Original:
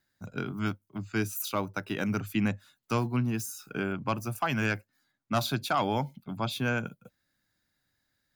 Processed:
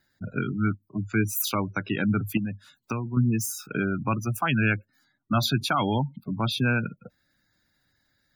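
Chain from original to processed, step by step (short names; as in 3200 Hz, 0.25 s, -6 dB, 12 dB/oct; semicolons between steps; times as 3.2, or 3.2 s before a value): spectral gate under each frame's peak -20 dB strong; dynamic EQ 660 Hz, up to -8 dB, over -43 dBFS, Q 0.83; 2.37–3.17 compressor 6:1, threshold -35 dBFS, peak gain reduction 9.5 dB; gain +7.5 dB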